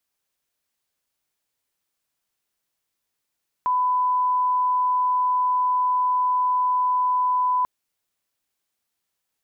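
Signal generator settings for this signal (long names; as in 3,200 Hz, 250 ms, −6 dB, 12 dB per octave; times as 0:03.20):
line-up tone −18 dBFS 3.99 s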